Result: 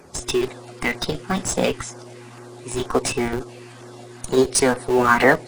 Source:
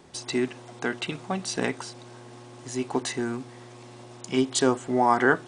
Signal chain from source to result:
spectral magnitudes quantised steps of 15 dB
auto-filter notch saw down 2.1 Hz 280–3,100 Hz
formants moved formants +5 semitones
in parallel at −6.5 dB: comparator with hysteresis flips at −28 dBFS
on the sum: level +6.5 dB

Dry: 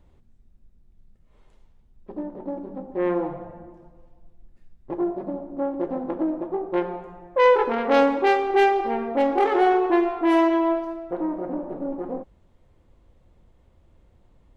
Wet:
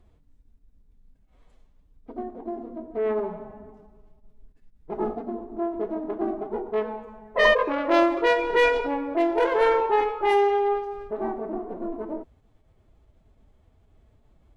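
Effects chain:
phase-vocoder pitch shift with formants kept +3.5 semitones
level −1.5 dB

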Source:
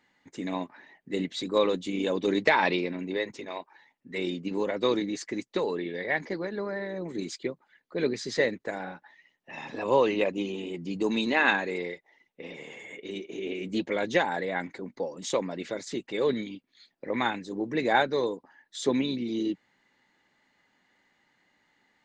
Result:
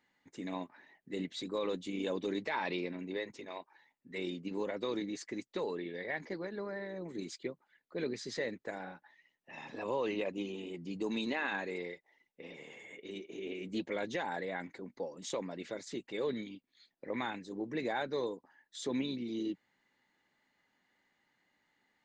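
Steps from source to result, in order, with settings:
brickwall limiter −18 dBFS, peak gain reduction 9.5 dB
level −7.5 dB

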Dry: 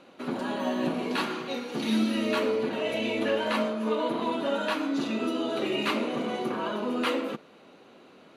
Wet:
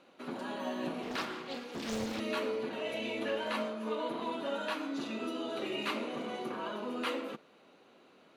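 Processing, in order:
low-shelf EQ 320 Hz −4.5 dB
0:01.03–0:02.20: highs frequency-modulated by the lows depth 0.98 ms
level −6.5 dB

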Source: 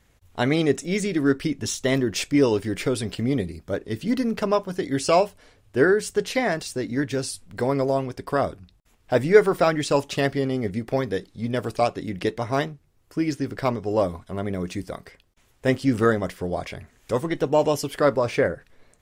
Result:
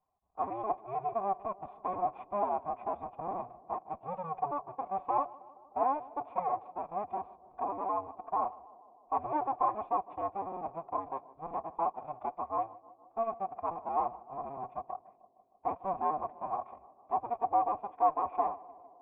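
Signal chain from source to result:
sub-harmonics by changed cycles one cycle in 2, inverted
high-shelf EQ 2,500 Hz +6 dB
in parallel at −5 dB: fuzz pedal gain 28 dB, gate −29 dBFS
on the sum: phase-vocoder pitch shift with formants kept +6 semitones
formant resonators in series a
high-frequency loss of the air 290 metres
on a send: tape delay 153 ms, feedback 82%, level −18 dB, low-pass 1,100 Hz
on the sum: level −2 dB

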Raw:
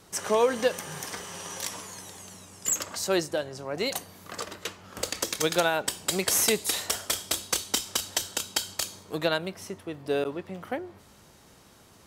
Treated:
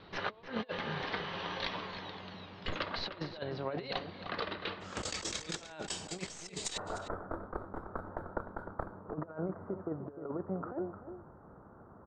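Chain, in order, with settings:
stylus tracing distortion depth 0.023 ms
elliptic low-pass filter 4,100 Hz, stop band 50 dB, from 0:04.80 7,900 Hz, from 0:06.76 1,400 Hz
compressor whose output falls as the input rises −35 dBFS, ratio −0.5
slap from a distant wall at 52 metres, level −10 dB
level −3 dB

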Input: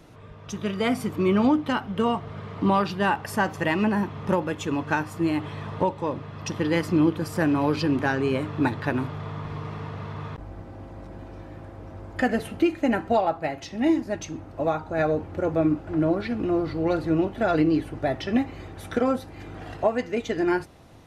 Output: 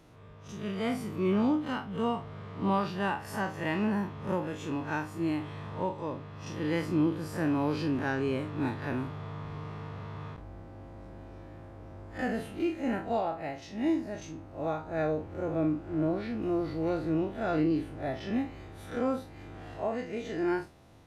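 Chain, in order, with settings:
spectrum smeared in time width 82 ms
0:16.42–0:16.90: high-shelf EQ 7,000 Hz +8.5 dB
level −5 dB

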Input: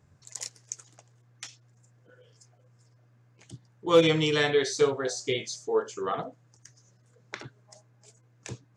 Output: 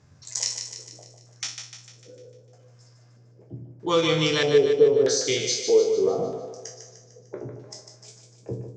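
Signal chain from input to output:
peak hold with a decay on every bin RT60 0.35 s
downward compressor 2 to 1, threshold −28 dBFS, peak gain reduction 8.5 dB
auto-filter low-pass square 0.79 Hz 480–5,700 Hz
on a send: echo with a time of its own for lows and highs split 410 Hz, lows 82 ms, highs 150 ms, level −7 dB
on the sum: level +4 dB

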